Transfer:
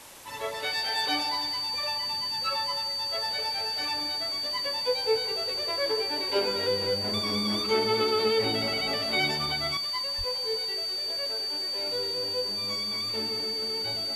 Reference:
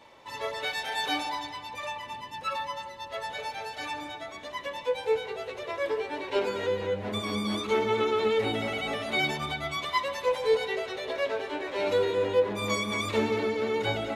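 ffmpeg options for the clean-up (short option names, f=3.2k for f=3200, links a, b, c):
-filter_complex "[0:a]bandreject=f=4.6k:w=30,asplit=3[a][b][c];[a]afade=t=out:st=10.17:d=0.02[d];[b]highpass=f=140:w=0.5412,highpass=f=140:w=1.3066,afade=t=in:st=10.17:d=0.02,afade=t=out:st=10.29:d=0.02[e];[c]afade=t=in:st=10.29:d=0.02[f];[d][e][f]amix=inputs=3:normalize=0,afwtdn=0.0045,asetnsamples=n=441:p=0,asendcmd='9.77 volume volume 10dB',volume=0dB"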